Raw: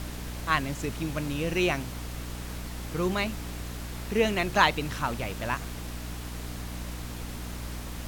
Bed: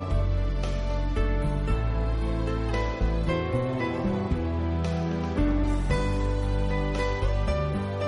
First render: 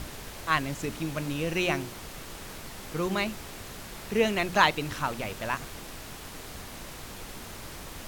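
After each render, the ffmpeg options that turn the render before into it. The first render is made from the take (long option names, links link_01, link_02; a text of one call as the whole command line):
ffmpeg -i in.wav -af "bandreject=frequency=60:width_type=h:width=4,bandreject=frequency=120:width_type=h:width=4,bandreject=frequency=180:width_type=h:width=4,bandreject=frequency=240:width_type=h:width=4,bandreject=frequency=300:width_type=h:width=4,bandreject=frequency=360:width_type=h:width=4" out.wav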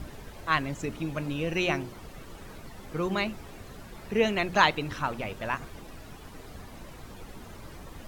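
ffmpeg -i in.wav -af "afftdn=noise_reduction=11:noise_floor=-43" out.wav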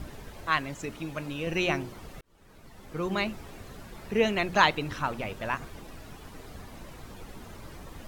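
ffmpeg -i in.wav -filter_complex "[0:a]asettb=1/sr,asplit=3[link_01][link_02][link_03];[link_01]atrim=end=0.504[link_04];[link_02]atrim=start=0.5:end=1.47,asetpts=PTS-STARTPTS,afade=type=in:duration=0.004:curve=qsin,afade=type=out:start_time=0.966:duration=0.004:curve=qsin,lowshelf=frequency=430:gain=-5.5[link_05];[link_03]atrim=start=1.466[link_06];[link_04][link_05]acrossfade=duration=0.004:curve1=hsin:curve2=qsin[link_07];[link_07][link_06]acrossfade=duration=0.004:curve1=qsin:curve2=hsin,asplit=2[link_08][link_09];[link_08]atrim=end=2.21,asetpts=PTS-STARTPTS,afade=type=out:start_time=2.206:duration=0.004:curve=hsin[link_10];[link_09]atrim=start=2.21,asetpts=PTS-STARTPTS,afade=type=in:duration=1[link_11];[link_10][link_11]concat=n=2:v=0:a=1" out.wav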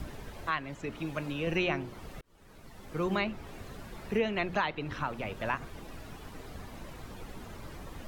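ffmpeg -i in.wav -filter_complex "[0:a]acrossover=split=350|630|4100[link_01][link_02][link_03][link_04];[link_04]acompressor=threshold=-58dB:ratio=6[link_05];[link_01][link_02][link_03][link_05]amix=inputs=4:normalize=0,alimiter=limit=-19dB:level=0:latency=1:release=412" out.wav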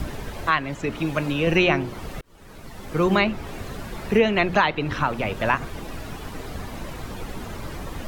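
ffmpeg -i in.wav -af "volume=11dB" out.wav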